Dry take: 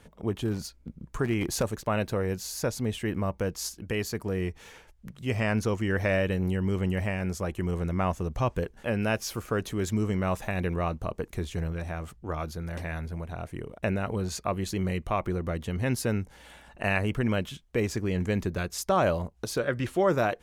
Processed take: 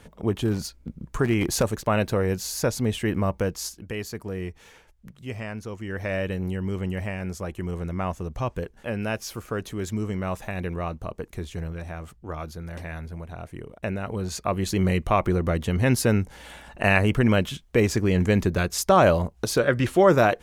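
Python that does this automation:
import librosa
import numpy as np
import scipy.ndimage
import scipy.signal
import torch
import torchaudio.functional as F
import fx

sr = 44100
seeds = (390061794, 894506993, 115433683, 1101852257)

y = fx.gain(x, sr, db=fx.line((3.37, 5.0), (3.92, -2.0), (5.08, -2.0), (5.6, -9.0), (6.23, -1.0), (14.0, -1.0), (14.84, 7.0)))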